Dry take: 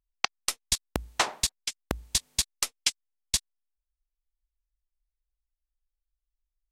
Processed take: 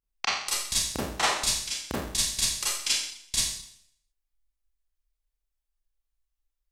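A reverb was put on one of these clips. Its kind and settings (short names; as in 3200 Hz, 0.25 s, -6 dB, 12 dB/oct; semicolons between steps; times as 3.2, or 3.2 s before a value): Schroeder reverb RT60 0.65 s, combs from 28 ms, DRR -9 dB; gain -6.5 dB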